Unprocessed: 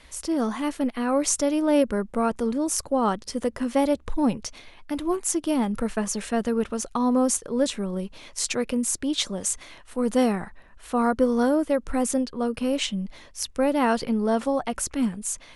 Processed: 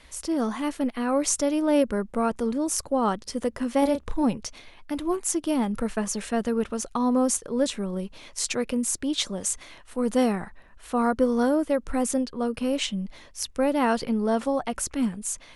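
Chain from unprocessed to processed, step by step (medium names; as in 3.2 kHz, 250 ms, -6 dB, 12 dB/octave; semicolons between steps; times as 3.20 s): 3.79–4.24 s: doubling 32 ms -8 dB; trim -1 dB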